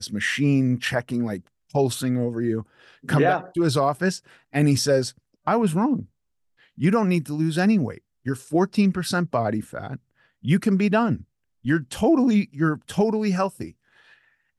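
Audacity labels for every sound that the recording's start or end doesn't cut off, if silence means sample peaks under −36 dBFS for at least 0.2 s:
1.740000	2.630000	sound
3.050000	4.180000	sound
4.530000	5.100000	sound
5.470000	6.040000	sound
6.780000	7.970000	sound
8.260000	9.960000	sound
10.450000	11.220000	sound
11.650000	13.700000	sound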